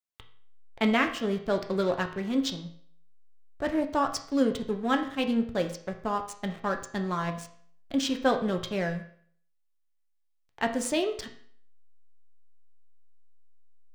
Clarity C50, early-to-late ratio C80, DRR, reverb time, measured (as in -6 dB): 10.5 dB, 13.0 dB, 4.0 dB, 0.55 s